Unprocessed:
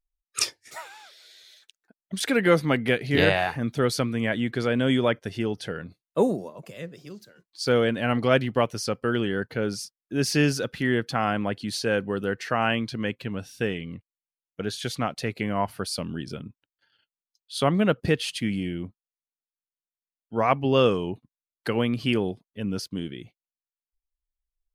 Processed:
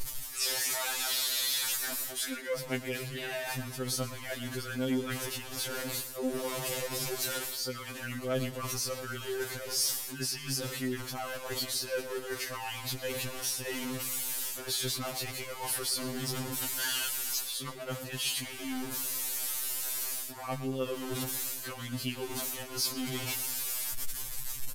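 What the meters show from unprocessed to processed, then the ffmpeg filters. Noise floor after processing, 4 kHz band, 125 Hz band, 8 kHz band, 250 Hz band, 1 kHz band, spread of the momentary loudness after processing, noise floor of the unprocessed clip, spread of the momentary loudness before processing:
−42 dBFS, −0.5 dB, −11.0 dB, +6.0 dB, −12.0 dB, −11.0 dB, 7 LU, below −85 dBFS, 16 LU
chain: -filter_complex "[0:a]aeval=exprs='val(0)+0.5*0.0531*sgn(val(0))':channel_layout=same,equalizer=frequency=120:width=0.74:gain=-6,bandreject=frequency=700:width=12,areverse,acompressor=threshold=-32dB:ratio=10,areverse,crystalizer=i=1.5:c=0,asplit=2[link_01][link_02];[link_02]adelay=118,lowpass=frequency=5000:poles=1,volume=-13dB,asplit=2[link_03][link_04];[link_04]adelay=118,lowpass=frequency=5000:poles=1,volume=0.52,asplit=2[link_05][link_06];[link_06]adelay=118,lowpass=frequency=5000:poles=1,volume=0.52,asplit=2[link_07][link_08];[link_08]adelay=118,lowpass=frequency=5000:poles=1,volume=0.52,asplit=2[link_09][link_10];[link_10]adelay=118,lowpass=frequency=5000:poles=1,volume=0.52[link_11];[link_01][link_03][link_05][link_07][link_09][link_11]amix=inputs=6:normalize=0,aresample=32000,aresample=44100,afftfilt=real='re*2.45*eq(mod(b,6),0)':imag='im*2.45*eq(mod(b,6),0)':win_size=2048:overlap=0.75"

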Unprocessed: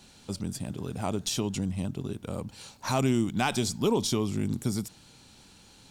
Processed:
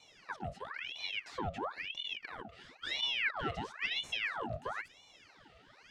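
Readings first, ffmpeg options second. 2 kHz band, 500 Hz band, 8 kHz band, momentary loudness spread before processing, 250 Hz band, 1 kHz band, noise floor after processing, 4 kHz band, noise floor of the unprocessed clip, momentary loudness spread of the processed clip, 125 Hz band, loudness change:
+3.0 dB, −13.0 dB, −22.5 dB, 12 LU, −20.0 dB, −6.0 dB, −62 dBFS, −0.5 dB, −55 dBFS, 12 LU, −17.5 dB, −7.5 dB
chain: -filter_complex "[0:a]asplit=2[link_01][link_02];[link_02]highpass=frequency=720:poles=1,volume=23dB,asoftclip=type=tanh:threshold=-14.5dB[link_03];[link_01][link_03]amix=inputs=2:normalize=0,lowpass=frequency=4100:poles=1,volume=-6dB,asplit=3[link_04][link_05][link_06];[link_04]bandpass=frequency=300:width_type=q:width=8,volume=0dB[link_07];[link_05]bandpass=frequency=870:width_type=q:width=8,volume=-6dB[link_08];[link_06]bandpass=frequency=2240:width_type=q:width=8,volume=-9dB[link_09];[link_07][link_08][link_09]amix=inputs=3:normalize=0,aeval=exprs='val(0)*sin(2*PI*1800*n/s+1800*0.8/0.99*sin(2*PI*0.99*n/s))':channel_layout=same"

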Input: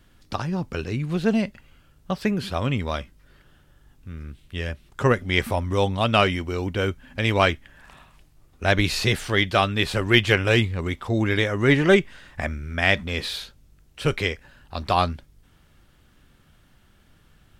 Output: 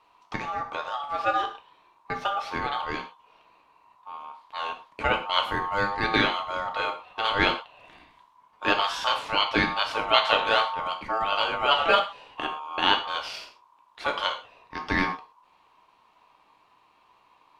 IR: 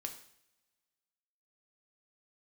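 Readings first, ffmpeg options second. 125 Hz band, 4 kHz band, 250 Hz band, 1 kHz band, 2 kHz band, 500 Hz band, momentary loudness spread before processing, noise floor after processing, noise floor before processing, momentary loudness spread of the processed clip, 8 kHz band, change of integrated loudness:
−17.5 dB, +0.5 dB, −10.5 dB, +3.0 dB, −2.5 dB, −6.5 dB, 14 LU, −62 dBFS, −58 dBFS, 14 LU, −9.5 dB, −3.0 dB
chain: -filter_complex "[0:a]lowpass=frequency=3100:poles=1,equalizer=frequency=2000:width=1.2:gain=6.5,aeval=exprs='val(0)*sin(2*PI*1000*n/s)':channel_layout=same[link_01];[1:a]atrim=start_sample=2205,afade=type=out:start_time=0.18:duration=0.01,atrim=end_sample=8379[link_02];[link_01][link_02]afir=irnorm=-1:irlink=0"

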